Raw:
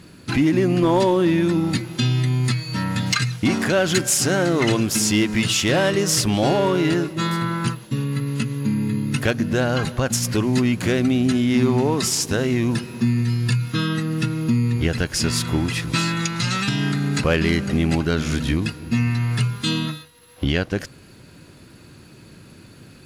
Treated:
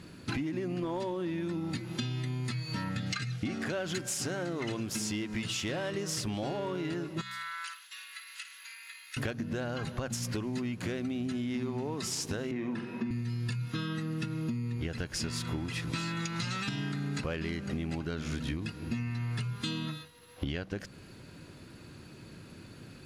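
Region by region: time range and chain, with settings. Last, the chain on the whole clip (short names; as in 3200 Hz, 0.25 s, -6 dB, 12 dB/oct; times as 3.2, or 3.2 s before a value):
2.89–3.67 Butterworth band-stop 980 Hz, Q 4.6 + high shelf 11000 Hz -8.5 dB
7.21–9.17 HPF 1500 Hz 24 dB/oct + compressor 4:1, threshold -33 dBFS + flutter echo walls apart 9.2 m, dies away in 0.28 s
12.51–13.11 three-band isolator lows -21 dB, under 160 Hz, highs -15 dB, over 2800 Hz + flutter echo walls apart 7.7 m, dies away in 0.35 s
whole clip: high shelf 9000 Hz -7 dB; de-hum 64.18 Hz, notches 3; compressor 10:1, threshold -27 dBFS; gain -4 dB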